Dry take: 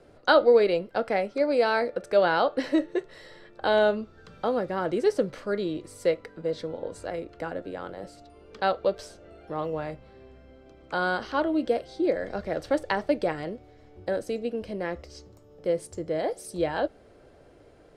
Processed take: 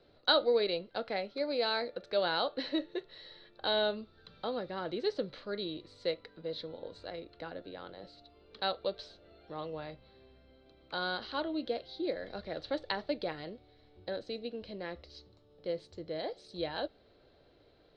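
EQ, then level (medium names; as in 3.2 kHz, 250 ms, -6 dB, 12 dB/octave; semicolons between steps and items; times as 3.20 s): four-pole ladder low-pass 4.3 kHz, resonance 75%; +2.0 dB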